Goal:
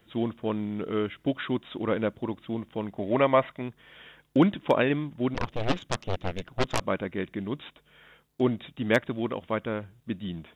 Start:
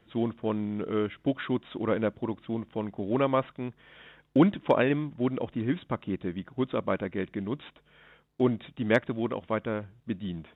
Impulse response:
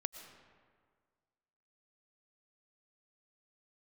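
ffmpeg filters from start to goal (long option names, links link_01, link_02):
-filter_complex "[0:a]asettb=1/sr,asplit=3[link_01][link_02][link_03];[link_01]atrim=end=2.984[link_04];[link_02]atrim=start=2.98:end=3.62,asetpts=PTS-STARTPTS,afade=type=in:duration=0.004:curve=qsin,afade=type=out:start_time=0.636:duration=0.004:curve=qsin,equalizer=frequency=630:width_type=o:width=0.33:gain=9,equalizer=frequency=1000:width_type=o:width=0.33:gain=5,equalizer=frequency=2000:width_type=o:width=0.33:gain=10[link_05];[link_03]atrim=start=3.616[link_06];[link_04][link_05]acrossfade=duration=0.004:curve1=hsin:curve2=qsin[link_07];[link_07][link_06]acrossfade=duration=0.004:curve1=qsin:curve2=hsin,asplit=3[link_08][link_09][link_10];[link_08]afade=type=out:start_time=5.34:duration=0.02[link_11];[link_09]aeval=exprs='0.188*(cos(1*acos(clip(val(0)/0.188,-1,1)))-cos(1*PI/2))+0.0188*(cos(3*acos(clip(val(0)/0.188,-1,1)))-cos(3*PI/2))+0.0473*(cos(7*acos(clip(val(0)/0.188,-1,1)))-cos(7*PI/2))+0.0422*(cos(8*acos(clip(val(0)/0.188,-1,1)))-cos(8*PI/2))':channel_layout=same,afade=type=in:start_time=5.34:duration=0.02,afade=type=out:start_time=6.79:duration=0.02[link_12];[link_10]afade=type=in:start_time=6.79:duration=0.02[link_13];[link_11][link_12][link_13]amix=inputs=3:normalize=0,crystalizer=i=2:c=0"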